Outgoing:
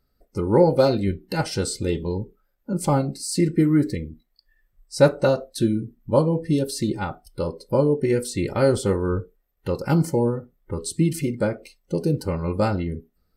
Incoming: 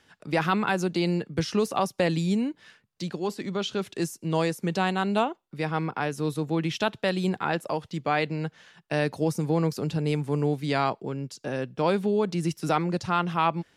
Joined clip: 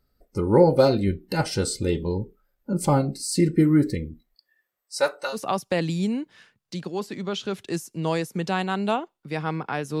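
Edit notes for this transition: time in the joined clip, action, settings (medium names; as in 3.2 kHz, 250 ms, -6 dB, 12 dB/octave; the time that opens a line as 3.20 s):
outgoing
4.34–5.38 s: high-pass 250 Hz -> 1.4 kHz
5.35 s: go over to incoming from 1.63 s, crossfade 0.06 s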